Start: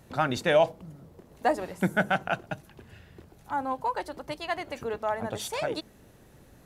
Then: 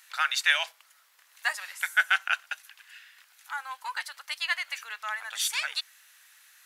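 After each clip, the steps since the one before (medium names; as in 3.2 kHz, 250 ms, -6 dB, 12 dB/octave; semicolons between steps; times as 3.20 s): high-pass 1.5 kHz 24 dB/octave; trim +8.5 dB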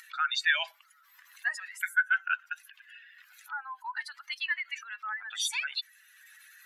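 spectral contrast enhancement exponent 2.2; upward compressor, threshold -46 dBFS; trim -2 dB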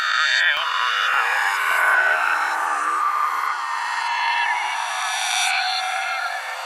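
reverse spectral sustain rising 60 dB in 2.66 s; ever faster or slower copies 570 ms, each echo -4 st, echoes 3; echo that smears into a reverb 508 ms, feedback 41%, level -11 dB; trim +2.5 dB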